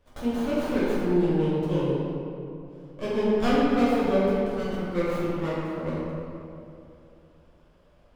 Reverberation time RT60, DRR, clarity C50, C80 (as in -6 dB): 2.7 s, -10.0 dB, -4.0 dB, -1.5 dB